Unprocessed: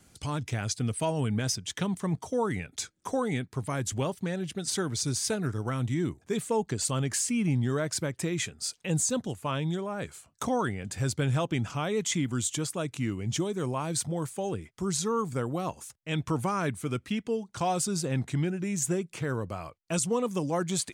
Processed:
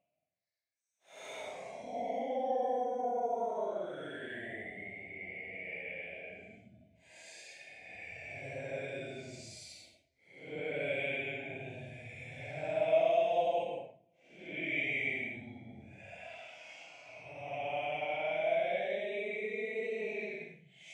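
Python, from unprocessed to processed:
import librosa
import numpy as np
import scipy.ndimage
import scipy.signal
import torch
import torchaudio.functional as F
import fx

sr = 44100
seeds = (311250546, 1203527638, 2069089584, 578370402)

y = fx.double_bandpass(x, sr, hz=1200.0, octaves=1.8)
y = fx.paulstretch(y, sr, seeds[0], factor=12.0, window_s=0.05, from_s=10.31)
y = y * 10.0 ** (5.0 / 20.0)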